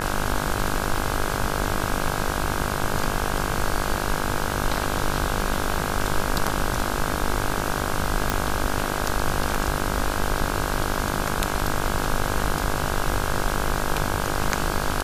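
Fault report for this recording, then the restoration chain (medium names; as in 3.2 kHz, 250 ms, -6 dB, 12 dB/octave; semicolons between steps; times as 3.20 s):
buzz 50 Hz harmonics 33 -28 dBFS
8.30 s: pop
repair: de-click; de-hum 50 Hz, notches 33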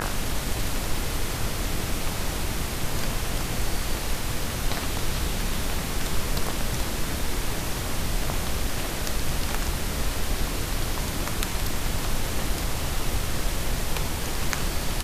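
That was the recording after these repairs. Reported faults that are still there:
nothing left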